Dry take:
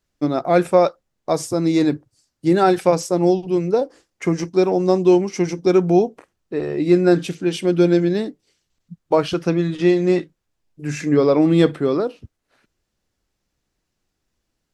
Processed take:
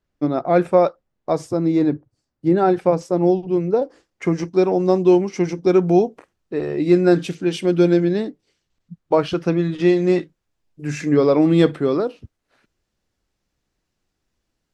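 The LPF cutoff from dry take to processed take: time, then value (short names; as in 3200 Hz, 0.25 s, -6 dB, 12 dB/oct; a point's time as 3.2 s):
LPF 6 dB/oct
1900 Hz
from 1.57 s 1000 Hz
from 3.01 s 1600 Hz
from 3.82 s 3700 Hz
from 5.82 s 7400 Hz
from 7.94 s 3700 Hz
from 9.8 s 8000 Hz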